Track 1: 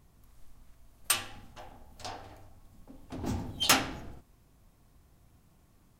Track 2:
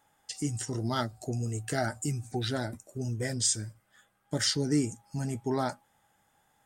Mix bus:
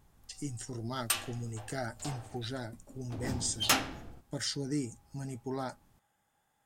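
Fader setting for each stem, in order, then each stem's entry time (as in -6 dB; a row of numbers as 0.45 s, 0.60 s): -3.0 dB, -7.0 dB; 0.00 s, 0.00 s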